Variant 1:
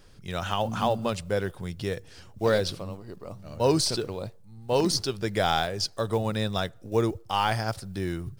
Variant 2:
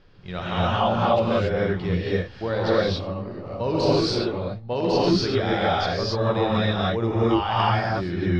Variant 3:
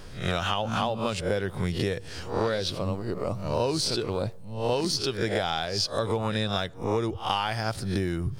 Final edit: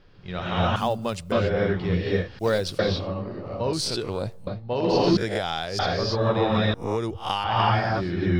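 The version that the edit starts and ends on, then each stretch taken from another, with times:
2
0.76–1.32 from 1
2.39–2.79 from 1
3.73–4.47 from 3
5.17–5.79 from 3
6.74–7.44 from 3

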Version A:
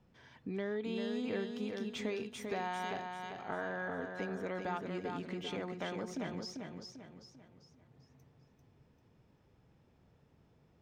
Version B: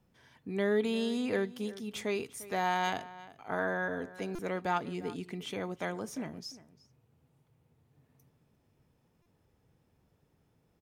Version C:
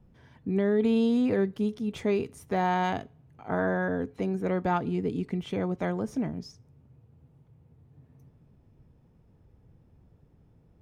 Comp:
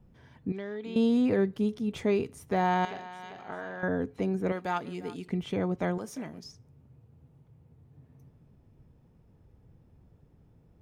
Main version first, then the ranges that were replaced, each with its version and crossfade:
C
0.52–0.96 from A
2.85–3.83 from A
4.52–5.28 from B
5.98–6.44 from B

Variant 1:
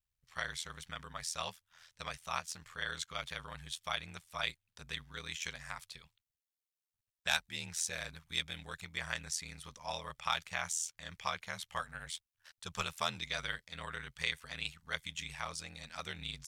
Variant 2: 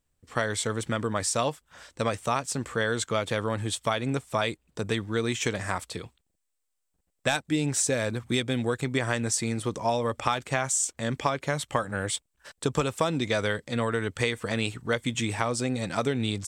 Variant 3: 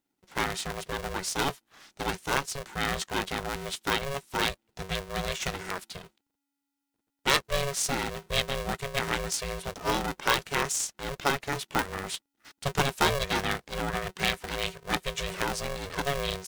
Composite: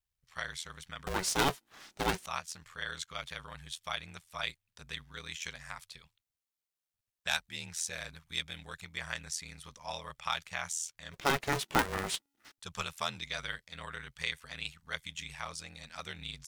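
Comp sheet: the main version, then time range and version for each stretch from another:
1
1.07–2.26 from 3
11.23–12.49 from 3, crossfade 0.24 s
not used: 2

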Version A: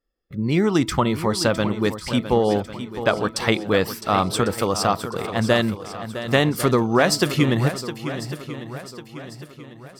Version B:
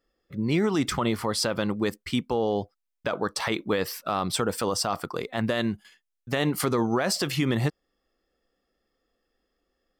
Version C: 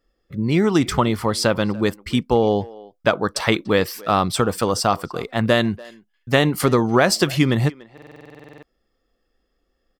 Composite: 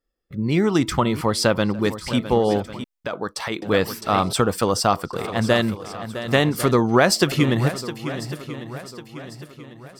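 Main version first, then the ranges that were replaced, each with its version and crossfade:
A
1.21–1.79 from C
2.84–3.62 from B
4.33–5.13 from C
6.75–7.32 from C

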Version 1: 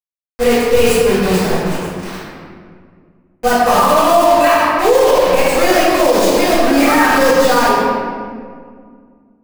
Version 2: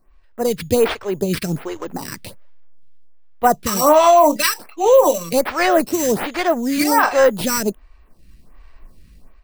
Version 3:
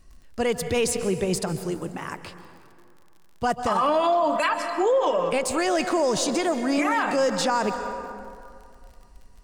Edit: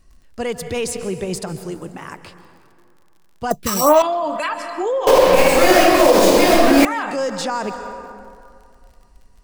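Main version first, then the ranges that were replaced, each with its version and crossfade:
3
3.51–4.02 from 2
5.07–6.85 from 1

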